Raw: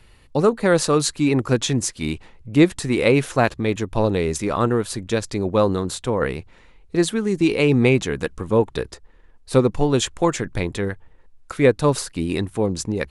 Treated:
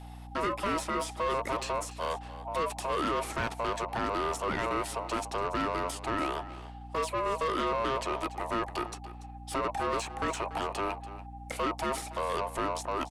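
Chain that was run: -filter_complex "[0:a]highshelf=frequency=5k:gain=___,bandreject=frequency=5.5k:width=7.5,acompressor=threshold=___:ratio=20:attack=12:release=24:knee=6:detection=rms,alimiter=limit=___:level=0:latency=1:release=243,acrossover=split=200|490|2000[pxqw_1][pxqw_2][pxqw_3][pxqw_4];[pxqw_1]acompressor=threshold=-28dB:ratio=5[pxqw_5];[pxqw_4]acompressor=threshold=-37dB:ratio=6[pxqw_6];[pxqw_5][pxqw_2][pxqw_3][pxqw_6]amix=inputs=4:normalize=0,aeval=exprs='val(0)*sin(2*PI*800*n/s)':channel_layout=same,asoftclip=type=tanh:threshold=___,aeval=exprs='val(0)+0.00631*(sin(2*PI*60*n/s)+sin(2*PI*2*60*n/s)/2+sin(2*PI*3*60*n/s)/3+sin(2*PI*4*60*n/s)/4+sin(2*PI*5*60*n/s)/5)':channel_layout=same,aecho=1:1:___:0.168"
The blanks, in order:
4.5, -20dB, -10.5dB, -25dB, 287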